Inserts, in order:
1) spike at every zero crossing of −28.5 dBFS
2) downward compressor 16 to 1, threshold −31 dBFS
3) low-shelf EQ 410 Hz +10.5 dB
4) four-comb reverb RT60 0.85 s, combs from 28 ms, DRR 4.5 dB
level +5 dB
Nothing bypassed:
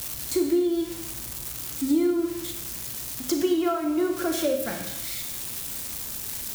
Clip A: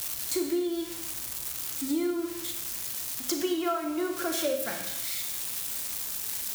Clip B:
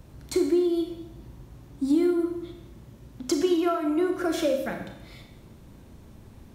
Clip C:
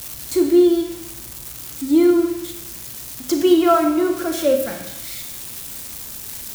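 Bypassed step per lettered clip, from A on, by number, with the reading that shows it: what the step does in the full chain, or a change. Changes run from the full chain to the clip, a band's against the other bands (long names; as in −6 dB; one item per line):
3, 125 Hz band −8.5 dB
1, distortion level −10 dB
2, average gain reduction 3.0 dB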